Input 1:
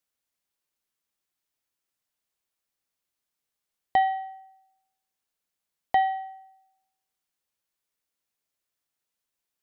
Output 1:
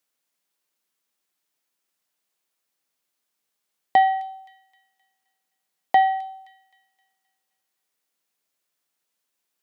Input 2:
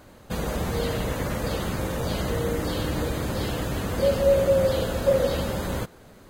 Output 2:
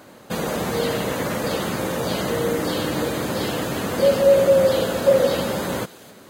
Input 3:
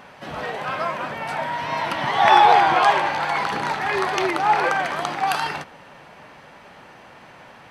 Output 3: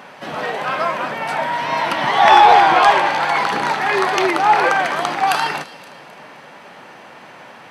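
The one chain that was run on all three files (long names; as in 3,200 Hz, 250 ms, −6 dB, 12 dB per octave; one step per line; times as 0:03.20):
high-pass filter 170 Hz 12 dB per octave
soft clipping −6 dBFS
on a send: delay with a high-pass on its return 261 ms, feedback 42%, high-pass 2,900 Hz, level −14.5 dB
on the sum: level +5.5 dB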